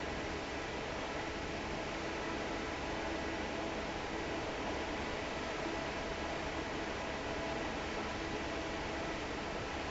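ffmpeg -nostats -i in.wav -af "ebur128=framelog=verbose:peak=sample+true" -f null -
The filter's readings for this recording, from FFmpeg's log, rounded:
Integrated loudness:
  I:         -39.3 LUFS
  Threshold: -49.3 LUFS
Loudness range:
  LRA:         0.4 LU
  Threshold: -59.2 LUFS
  LRA low:   -39.4 LUFS
  LRA high:  -39.0 LUFS
Sample peak:
  Peak:      -26.1 dBFS
True peak:
  Peak:      -26.1 dBFS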